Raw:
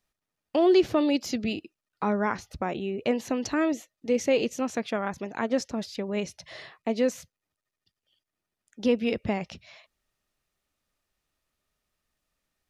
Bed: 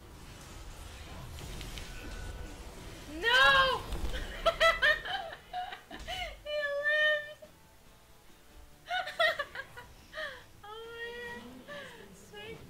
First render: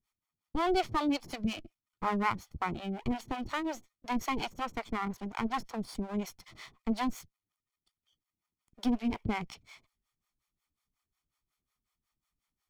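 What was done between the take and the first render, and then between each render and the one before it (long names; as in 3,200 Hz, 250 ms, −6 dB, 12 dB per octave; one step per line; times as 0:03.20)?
lower of the sound and its delayed copy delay 0.91 ms
two-band tremolo in antiphase 5.5 Hz, depth 100%, crossover 480 Hz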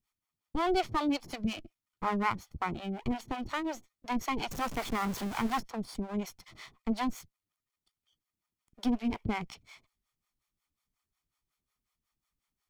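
0:04.49–0:05.60: converter with a step at zero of −35.5 dBFS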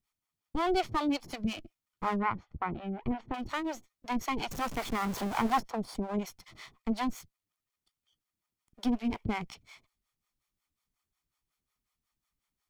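0:02.16–0:03.34: low-pass filter 2,000 Hz
0:05.13–0:06.19: parametric band 690 Hz +6 dB 1.8 octaves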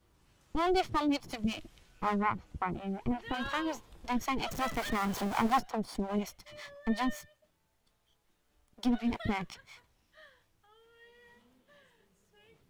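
mix in bed −17.5 dB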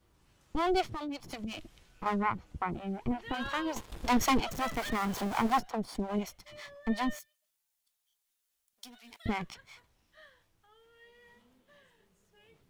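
0:00.82–0:02.06: downward compressor 10 to 1, threshold −34 dBFS
0:03.76–0:04.40: leveller curve on the samples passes 3
0:07.19–0:09.26: first-order pre-emphasis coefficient 0.97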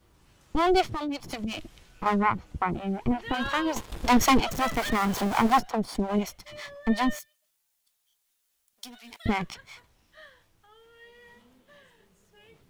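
level +6.5 dB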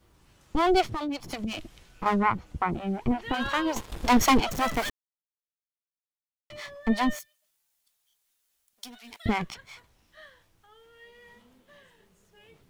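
0:04.90–0:06.50: silence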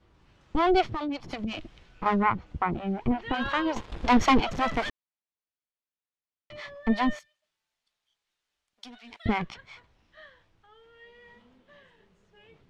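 low-pass filter 3,900 Hz 12 dB per octave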